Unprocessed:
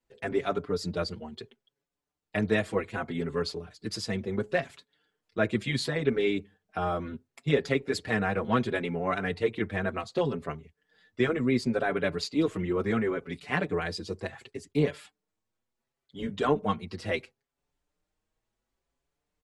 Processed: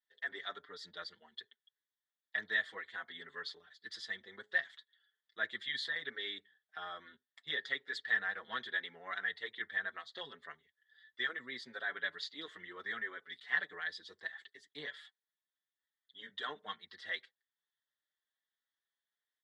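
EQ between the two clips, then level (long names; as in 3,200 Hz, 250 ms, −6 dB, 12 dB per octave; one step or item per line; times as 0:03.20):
pair of resonant band-passes 2,500 Hz, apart 0.91 octaves
+2.5 dB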